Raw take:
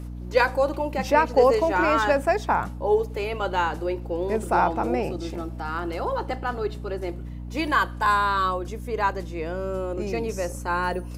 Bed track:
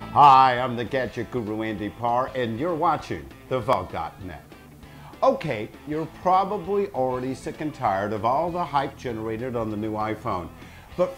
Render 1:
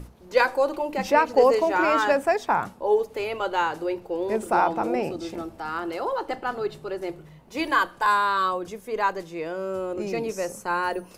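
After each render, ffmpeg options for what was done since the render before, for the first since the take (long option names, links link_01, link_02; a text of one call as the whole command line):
ffmpeg -i in.wav -af "bandreject=frequency=60:width_type=h:width=6,bandreject=frequency=120:width_type=h:width=6,bandreject=frequency=180:width_type=h:width=6,bandreject=frequency=240:width_type=h:width=6,bandreject=frequency=300:width_type=h:width=6" out.wav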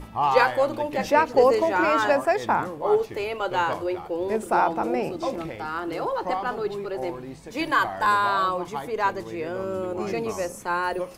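ffmpeg -i in.wav -i bed.wav -filter_complex "[1:a]volume=-9.5dB[link_01];[0:a][link_01]amix=inputs=2:normalize=0" out.wav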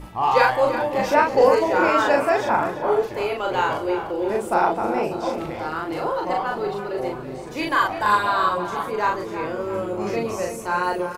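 ffmpeg -i in.wav -filter_complex "[0:a]asplit=2[link_01][link_02];[link_02]adelay=39,volume=-2dB[link_03];[link_01][link_03]amix=inputs=2:normalize=0,asplit=2[link_04][link_05];[link_05]adelay=336,lowpass=frequency=3600:poles=1,volume=-10dB,asplit=2[link_06][link_07];[link_07]adelay=336,lowpass=frequency=3600:poles=1,volume=0.51,asplit=2[link_08][link_09];[link_09]adelay=336,lowpass=frequency=3600:poles=1,volume=0.51,asplit=2[link_10][link_11];[link_11]adelay=336,lowpass=frequency=3600:poles=1,volume=0.51,asplit=2[link_12][link_13];[link_13]adelay=336,lowpass=frequency=3600:poles=1,volume=0.51,asplit=2[link_14][link_15];[link_15]adelay=336,lowpass=frequency=3600:poles=1,volume=0.51[link_16];[link_04][link_06][link_08][link_10][link_12][link_14][link_16]amix=inputs=7:normalize=0" out.wav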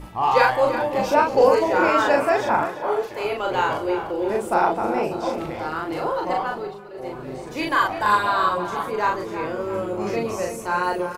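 ffmpeg -i in.wav -filter_complex "[0:a]asettb=1/sr,asplit=3[link_01][link_02][link_03];[link_01]atrim=end=0.994[link_04];[link_02]atrim=start=0.99:end=1.55,asetpts=PTS-STARTPTS,afade=type=in:duration=0.004:curve=qsin,afade=type=out:start_time=0.556:duration=0.004:curve=qsin,equalizer=frequency=1900:width_type=o:width=0.26:gain=-13[link_05];[link_03]atrim=start=1.546[link_06];[link_04][link_05]acrossfade=duration=0.004:curve1=hsin:curve2=qsin[link_07];[link_07][link_06]acrossfade=duration=0.004:curve1=qsin:curve2=hsin,asettb=1/sr,asplit=3[link_08][link_09][link_10];[link_08]atrim=end=2.654[link_11];[link_09]atrim=start=2.65:end=3.25,asetpts=PTS-STARTPTS,afade=type=in:duration=0.004:curve=qsin,afade=type=out:start_time=0.596:duration=0.004:curve=qsin,lowshelf=frequency=330:gain=-10[link_12];[link_10]atrim=start=3.246[link_13];[link_11][link_12]acrossfade=duration=0.004:curve1=hsin:curve2=qsin[link_14];[link_14][link_13]acrossfade=duration=0.004:curve1=qsin:curve2=hsin,asplit=3[link_15][link_16][link_17];[link_15]atrim=end=6.79,asetpts=PTS-STARTPTS,afade=type=out:start_time=6.43:duration=0.36:silence=0.266073[link_18];[link_16]atrim=start=6.79:end=6.93,asetpts=PTS-STARTPTS,volume=-11.5dB[link_19];[link_17]atrim=start=6.93,asetpts=PTS-STARTPTS,afade=type=in:duration=0.36:silence=0.266073[link_20];[link_18][link_19][link_20]concat=n=3:v=0:a=1" out.wav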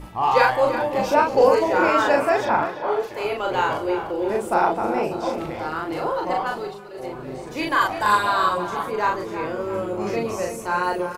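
ffmpeg -i in.wav -filter_complex "[0:a]asettb=1/sr,asplit=3[link_01][link_02][link_03];[link_01]atrim=end=2.454[link_04];[link_02]atrim=start=2.45:end=3,asetpts=PTS-STARTPTS,afade=type=in:duration=0.004:curve=qsin,afade=type=out:start_time=0.546:duration=0.004:curve=qsin,highshelf=frequency=6000:width_type=q:width=1.5:gain=-6.5[link_05];[link_03]atrim=start=2.996[link_06];[link_04][link_05]acrossfade=duration=0.004:curve1=hsin:curve2=qsin[link_07];[link_07][link_06]acrossfade=duration=0.004:curve1=qsin:curve2=hsin,asettb=1/sr,asplit=3[link_08][link_09][link_10];[link_08]atrim=end=6.464[link_11];[link_09]atrim=start=6.46:end=7.06,asetpts=PTS-STARTPTS,afade=type=in:duration=0.004:curve=qsin,afade=type=out:start_time=0.596:duration=0.004:curve=qsin,equalizer=frequency=8700:width_type=o:width=2.6:gain=8[link_12];[link_10]atrim=start=7.056[link_13];[link_11][link_12]acrossfade=duration=0.004:curve1=hsin:curve2=qsin[link_14];[link_14][link_13]acrossfade=duration=0.004:curve1=qsin:curve2=hsin,asettb=1/sr,asplit=3[link_15][link_16][link_17];[link_15]atrim=end=7.814[link_18];[link_16]atrim=start=7.81:end=8.65,asetpts=PTS-STARTPTS,afade=type=in:duration=0.004:curve=qsin,afade=type=out:start_time=0.836:duration=0.004:curve=qsin,equalizer=frequency=8900:width=0.53:gain=5.5[link_19];[link_17]atrim=start=8.646[link_20];[link_18][link_19]acrossfade=duration=0.004:curve1=hsin:curve2=qsin[link_21];[link_21][link_20]acrossfade=duration=0.004:curve1=qsin:curve2=hsin" out.wav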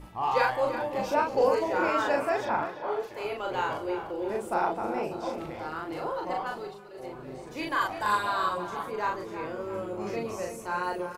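ffmpeg -i in.wav -af "volume=-8dB" out.wav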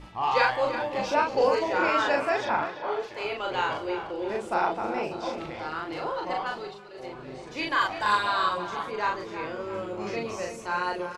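ffmpeg -i in.wav -af "lowpass=4400,highshelf=frequency=2200:gain=11.5" out.wav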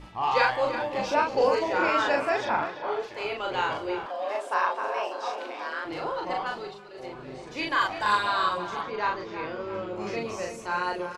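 ffmpeg -i in.wav -filter_complex "[0:a]asettb=1/sr,asplit=3[link_01][link_02][link_03];[link_01]atrim=end=4.064[link_04];[link_02]atrim=start=4.06:end=5.85,asetpts=PTS-STARTPTS,afade=type=in:duration=0.004:curve=qsin,afade=type=out:start_time=1.786:duration=0.004:curve=qsin,afreqshift=200[link_05];[link_03]atrim=start=5.846[link_06];[link_04][link_05]acrossfade=duration=0.004:curve1=hsin:curve2=qsin[link_07];[link_07][link_06]acrossfade=duration=0.004:curve1=qsin:curve2=hsin,asettb=1/sr,asplit=3[link_08][link_09][link_10];[link_08]atrim=end=8.814[link_11];[link_09]atrim=start=8.81:end=9.96,asetpts=PTS-STARTPTS,afade=type=in:duration=0.004:curve=qsin,afade=type=out:start_time=1.146:duration=0.004:curve=qsin,lowpass=frequency=5900:width=0.5412,lowpass=frequency=5900:width=1.3066[link_12];[link_10]atrim=start=9.956[link_13];[link_11][link_12]acrossfade=duration=0.004:curve1=hsin:curve2=qsin[link_14];[link_14][link_13]acrossfade=duration=0.004:curve1=qsin:curve2=hsin" out.wav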